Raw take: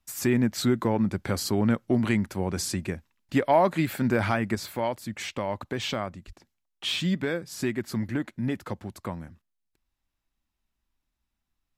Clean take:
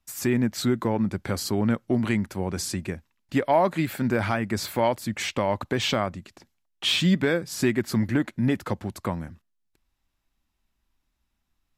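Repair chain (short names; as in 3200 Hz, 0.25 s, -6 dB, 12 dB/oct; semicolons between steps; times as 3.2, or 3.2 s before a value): 6.26–6.38 HPF 140 Hz 24 dB/oct; gain 0 dB, from 4.55 s +5.5 dB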